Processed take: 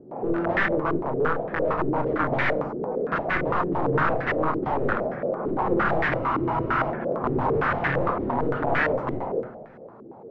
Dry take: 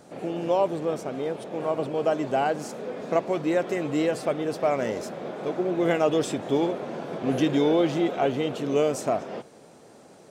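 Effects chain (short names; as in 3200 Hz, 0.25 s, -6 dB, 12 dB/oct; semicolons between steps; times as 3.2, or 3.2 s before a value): spectral gate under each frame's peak -30 dB strong; wrapped overs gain 22.5 dB; air absorption 86 m; on a send at -4.5 dB: reverb RT60 0.75 s, pre-delay 3 ms; on the sum: spectral freeze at 6.2, 0.70 s; stepped low-pass 8.8 Hz 360–1800 Hz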